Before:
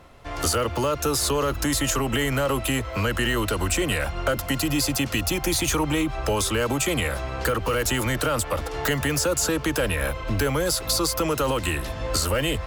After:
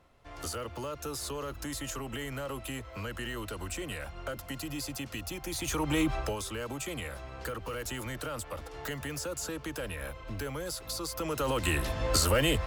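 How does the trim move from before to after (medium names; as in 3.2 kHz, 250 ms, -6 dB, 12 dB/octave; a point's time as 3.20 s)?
5.47 s -14 dB
6.13 s -1.5 dB
6.38 s -13.5 dB
11.03 s -13.5 dB
11.78 s -2 dB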